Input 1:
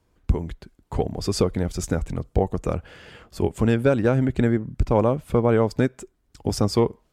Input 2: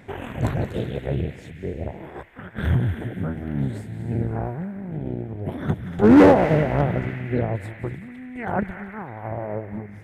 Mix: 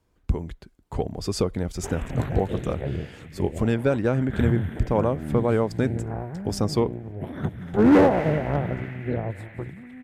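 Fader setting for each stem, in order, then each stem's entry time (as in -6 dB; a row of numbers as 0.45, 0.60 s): -3.0, -4.0 dB; 0.00, 1.75 s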